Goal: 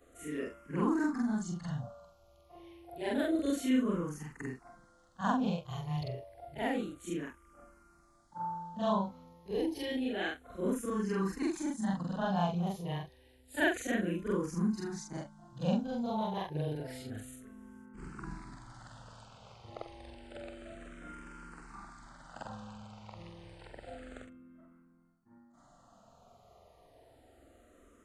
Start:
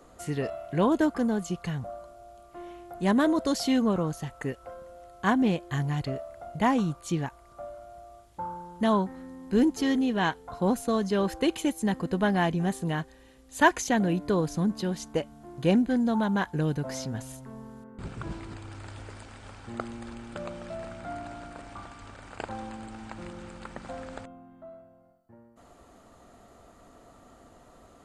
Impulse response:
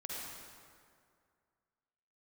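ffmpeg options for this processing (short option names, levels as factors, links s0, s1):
-filter_complex "[0:a]afftfilt=real='re':imag='-im':win_size=4096:overlap=0.75,asplit=2[s0][s1];[s1]afreqshift=-0.29[s2];[s0][s2]amix=inputs=2:normalize=1"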